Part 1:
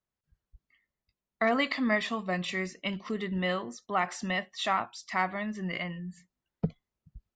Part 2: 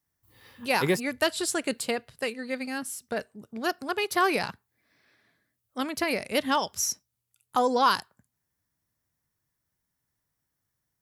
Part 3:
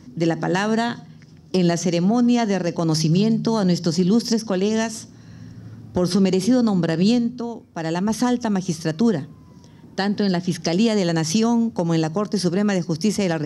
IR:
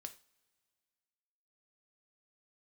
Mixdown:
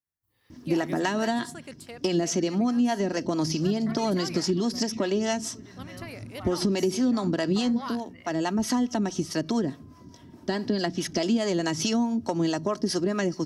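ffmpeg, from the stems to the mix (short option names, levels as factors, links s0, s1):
-filter_complex "[0:a]adelay=2450,volume=0.141[s0];[1:a]volume=0.2[s1];[2:a]aecho=1:1:3.1:0.49,acrossover=split=490[s2][s3];[s2]aeval=exprs='val(0)*(1-0.7/2+0.7/2*cos(2*PI*4.7*n/s))':c=same[s4];[s3]aeval=exprs='val(0)*(1-0.7/2-0.7/2*cos(2*PI*4.7*n/s))':c=same[s5];[s4][s5]amix=inputs=2:normalize=0,adelay=500,volume=1.12[s6];[s0][s1][s6]amix=inputs=3:normalize=0,acompressor=threshold=0.0631:ratio=2"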